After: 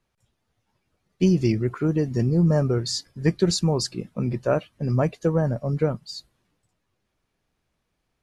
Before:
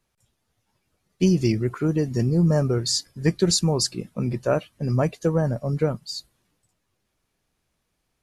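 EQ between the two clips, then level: treble shelf 6.3 kHz -10.5 dB; 0.0 dB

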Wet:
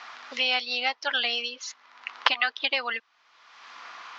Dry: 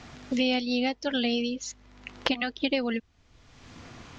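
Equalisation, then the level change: resonant high-pass 1.1 kHz, resonance Q 2.2; low-pass 5.5 kHz 24 dB/octave; +4.5 dB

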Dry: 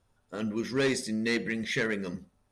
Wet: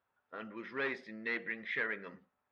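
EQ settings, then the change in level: band-pass filter 1.6 kHz, Q 0.95; distance through air 320 m; 0.0 dB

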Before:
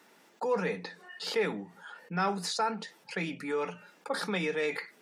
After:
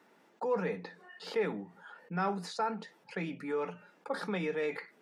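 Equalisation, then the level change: treble shelf 2.7 kHz -11.5 dB; -1.5 dB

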